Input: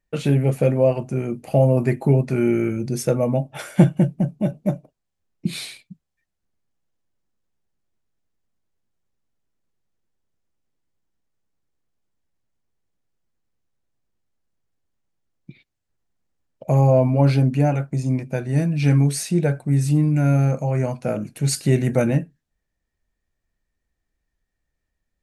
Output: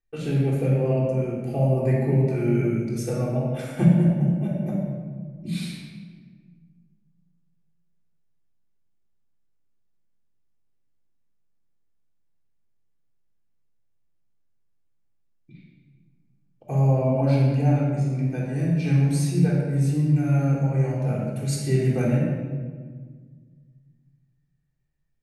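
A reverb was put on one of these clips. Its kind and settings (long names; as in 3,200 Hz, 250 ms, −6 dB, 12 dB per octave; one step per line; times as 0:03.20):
rectangular room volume 1,800 cubic metres, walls mixed, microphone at 3.7 metres
level −11.5 dB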